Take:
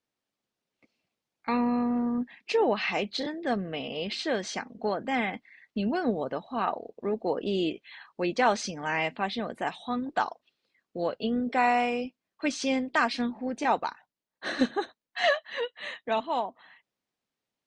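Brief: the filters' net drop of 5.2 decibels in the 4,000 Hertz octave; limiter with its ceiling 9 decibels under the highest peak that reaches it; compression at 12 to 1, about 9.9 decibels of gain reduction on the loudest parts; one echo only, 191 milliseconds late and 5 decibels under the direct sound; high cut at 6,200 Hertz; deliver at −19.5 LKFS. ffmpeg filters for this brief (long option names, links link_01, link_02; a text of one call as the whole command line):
ffmpeg -i in.wav -af "lowpass=6200,equalizer=frequency=4000:width_type=o:gain=-6.5,acompressor=threshold=-28dB:ratio=12,alimiter=level_in=0.5dB:limit=-24dB:level=0:latency=1,volume=-0.5dB,aecho=1:1:191:0.562,volume=15.5dB" out.wav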